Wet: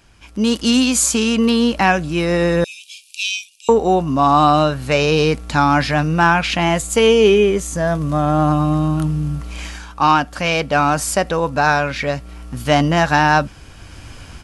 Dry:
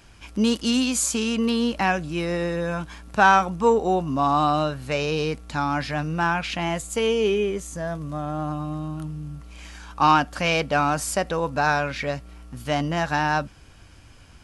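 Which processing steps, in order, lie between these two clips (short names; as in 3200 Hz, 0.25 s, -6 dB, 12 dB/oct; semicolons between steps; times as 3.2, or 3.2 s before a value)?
2.64–3.69 Chebyshev high-pass 2400 Hz, order 8; AGC gain up to 14.5 dB; gain -1 dB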